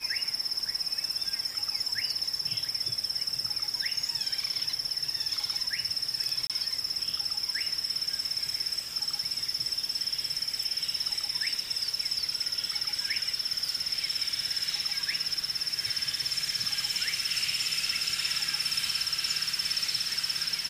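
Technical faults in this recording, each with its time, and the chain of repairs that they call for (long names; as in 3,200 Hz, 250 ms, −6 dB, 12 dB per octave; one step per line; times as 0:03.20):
surface crackle 20 per second −39 dBFS
0:06.47–0:06.50: drop-out 27 ms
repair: click removal
repair the gap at 0:06.47, 27 ms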